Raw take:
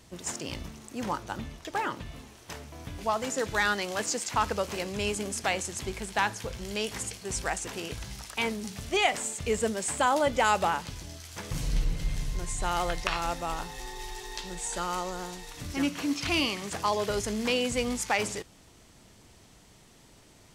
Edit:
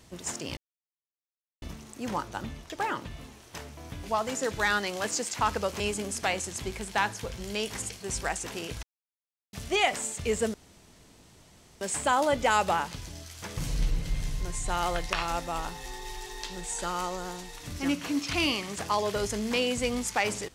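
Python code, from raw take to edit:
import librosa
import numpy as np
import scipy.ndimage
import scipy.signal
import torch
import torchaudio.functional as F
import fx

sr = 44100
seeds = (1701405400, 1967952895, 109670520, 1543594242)

y = fx.edit(x, sr, fx.insert_silence(at_s=0.57, length_s=1.05),
    fx.cut(start_s=4.75, length_s=0.26),
    fx.silence(start_s=8.04, length_s=0.7),
    fx.insert_room_tone(at_s=9.75, length_s=1.27), tone=tone)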